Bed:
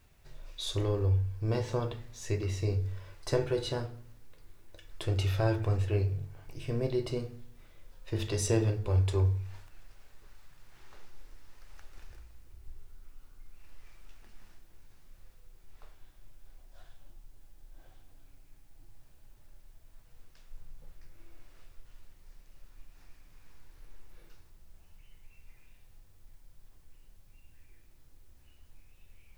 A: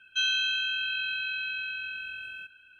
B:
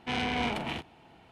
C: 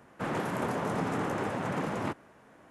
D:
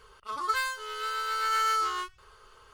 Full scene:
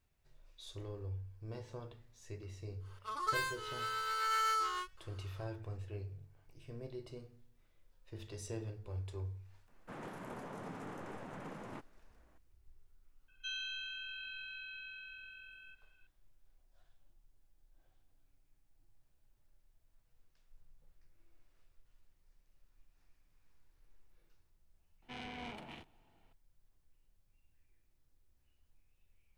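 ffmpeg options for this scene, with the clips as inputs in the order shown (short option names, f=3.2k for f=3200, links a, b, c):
-filter_complex "[0:a]volume=-15.5dB[a];[4:a]atrim=end=2.73,asetpts=PTS-STARTPTS,volume=-6.5dB,afade=t=in:d=0.1,afade=t=out:st=2.63:d=0.1,adelay=2790[b];[3:a]atrim=end=2.7,asetpts=PTS-STARTPTS,volume=-15dB,afade=t=in:d=0.004:c=hsin,afade=t=out:st=2.696:d=0.004:c=hsin,adelay=9680[c];[1:a]atrim=end=2.79,asetpts=PTS-STARTPTS,volume=-15dB,afade=t=in:d=0.004:c=hsin,afade=t=out:st=2.786:d=0.004:c=hsin,adelay=13280[d];[2:a]atrim=end=1.31,asetpts=PTS-STARTPTS,volume=-16dB,afade=t=in:d=0.004:c=hsin,afade=t=out:st=1.306:d=0.004:c=hsin,adelay=25020[e];[a][b][c][d][e]amix=inputs=5:normalize=0"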